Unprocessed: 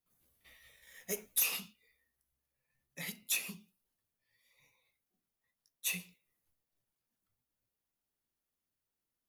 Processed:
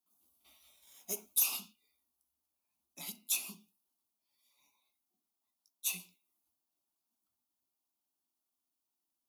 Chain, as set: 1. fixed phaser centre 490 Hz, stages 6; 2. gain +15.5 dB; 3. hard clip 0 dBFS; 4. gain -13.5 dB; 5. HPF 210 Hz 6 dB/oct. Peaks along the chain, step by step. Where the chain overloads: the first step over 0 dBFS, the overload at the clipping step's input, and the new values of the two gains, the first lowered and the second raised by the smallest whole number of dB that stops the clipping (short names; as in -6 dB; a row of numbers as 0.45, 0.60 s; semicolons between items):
-21.0, -5.5, -5.5, -19.0, -19.0 dBFS; no overload